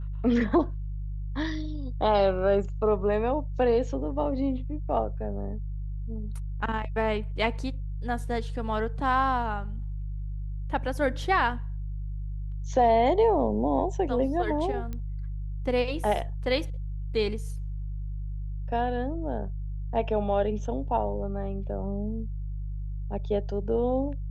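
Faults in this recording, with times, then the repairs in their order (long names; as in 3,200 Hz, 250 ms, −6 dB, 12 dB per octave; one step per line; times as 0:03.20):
mains hum 50 Hz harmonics 3 −33 dBFS
0:14.93: click −23 dBFS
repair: click removal
hum removal 50 Hz, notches 3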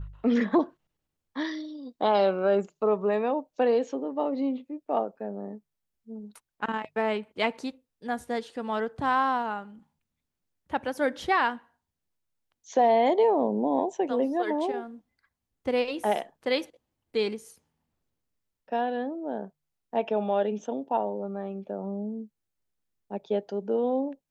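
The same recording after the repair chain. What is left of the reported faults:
0:14.93: click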